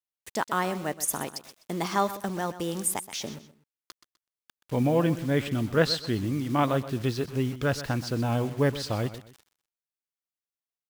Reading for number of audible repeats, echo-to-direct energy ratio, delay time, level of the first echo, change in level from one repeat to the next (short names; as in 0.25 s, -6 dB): 2, -13.5 dB, 0.126 s, -14.0 dB, -10.5 dB